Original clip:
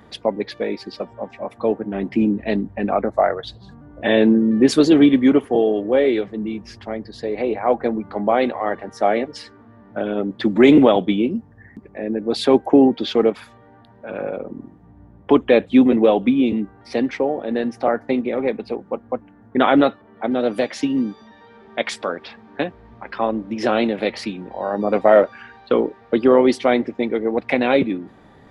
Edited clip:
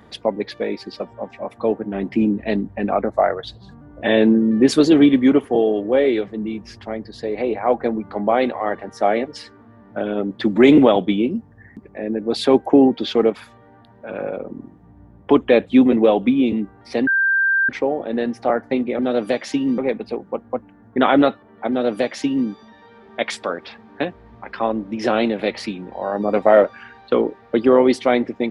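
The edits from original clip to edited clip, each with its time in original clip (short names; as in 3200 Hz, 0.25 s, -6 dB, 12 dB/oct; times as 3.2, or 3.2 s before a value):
17.07 add tone 1580 Hz -14 dBFS 0.62 s
20.28–21.07 copy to 18.37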